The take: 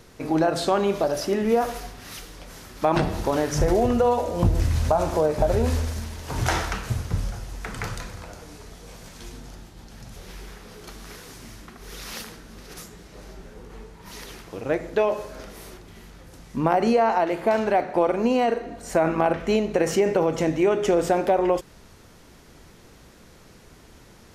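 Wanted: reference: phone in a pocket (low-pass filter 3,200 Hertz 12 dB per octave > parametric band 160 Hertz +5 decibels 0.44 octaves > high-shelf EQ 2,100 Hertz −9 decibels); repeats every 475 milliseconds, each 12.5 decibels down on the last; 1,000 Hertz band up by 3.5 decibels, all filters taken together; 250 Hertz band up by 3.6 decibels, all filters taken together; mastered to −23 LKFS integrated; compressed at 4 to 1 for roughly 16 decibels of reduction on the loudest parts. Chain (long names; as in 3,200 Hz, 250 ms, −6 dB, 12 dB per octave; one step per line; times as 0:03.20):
parametric band 250 Hz +3.5 dB
parametric band 1,000 Hz +6.5 dB
downward compressor 4 to 1, threshold −33 dBFS
low-pass filter 3,200 Hz 12 dB per octave
parametric band 160 Hz +5 dB 0.44 octaves
high-shelf EQ 2,100 Hz −9 dB
repeating echo 475 ms, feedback 24%, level −12.5 dB
level +13.5 dB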